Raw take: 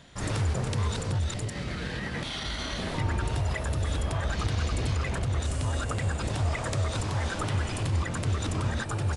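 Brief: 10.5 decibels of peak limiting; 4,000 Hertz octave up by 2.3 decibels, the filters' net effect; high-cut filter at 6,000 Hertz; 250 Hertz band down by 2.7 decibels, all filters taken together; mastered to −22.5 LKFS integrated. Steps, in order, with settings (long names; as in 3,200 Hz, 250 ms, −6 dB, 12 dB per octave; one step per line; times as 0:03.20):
low-pass filter 6,000 Hz
parametric band 250 Hz −4 dB
parametric band 4,000 Hz +3.5 dB
level +13 dB
brickwall limiter −14 dBFS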